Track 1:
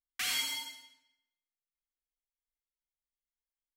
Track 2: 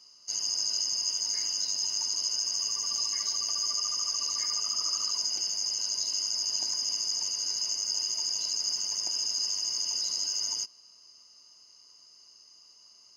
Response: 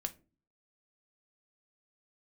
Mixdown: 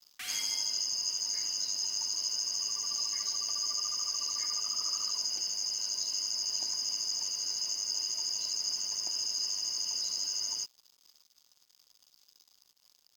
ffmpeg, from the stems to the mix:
-filter_complex "[0:a]volume=-7dB[a];[1:a]acrusher=bits=7:mix=0:aa=0.5,volume=-3dB[b];[a][b]amix=inputs=2:normalize=0"

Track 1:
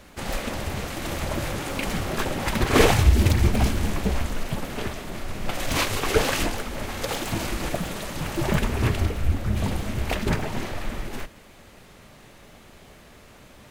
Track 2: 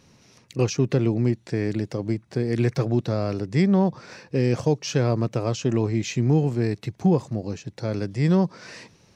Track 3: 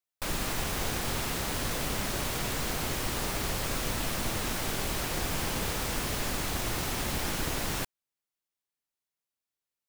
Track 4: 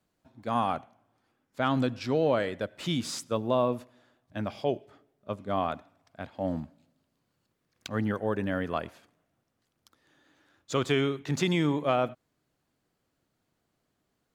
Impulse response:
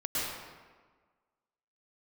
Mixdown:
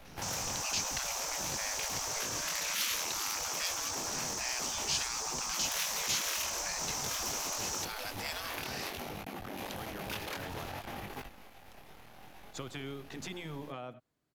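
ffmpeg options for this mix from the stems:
-filter_complex "[0:a]equalizer=f=800:t=o:w=0.33:g=12,equalizer=f=2.5k:t=o:w=0.33:g=3,equalizer=f=8k:t=o:w=0.33:g=-11,equalizer=f=12.5k:t=o:w=0.33:g=8,aeval=exprs='max(val(0),0)':c=same,flanger=delay=19.5:depth=6.7:speed=0.54,volume=-0.5dB[a];[1:a]bandreject=f=50:t=h:w=6,bandreject=f=100:t=h:w=6,bandreject=f=150:t=h:w=6,adelay=50,volume=2.5dB[b];[2:a]firequalizer=gain_entry='entry(130,0);entry(260,-28);entry(900,5);entry(2300,-23);entry(5900,10);entry(11000,-18)':delay=0.05:min_phase=1,volume=-1.5dB[c];[3:a]acompressor=threshold=-29dB:ratio=6,adelay=1850,volume=-5.5dB[d];[a][b][c][d]amix=inputs=4:normalize=0,afftfilt=real='re*lt(hypot(re,im),0.112)':imag='im*lt(hypot(re,im),0.112)':win_size=1024:overlap=0.75,acrossover=split=140|3000[e][f][g];[f]acompressor=threshold=-39dB:ratio=6[h];[e][h][g]amix=inputs=3:normalize=0"

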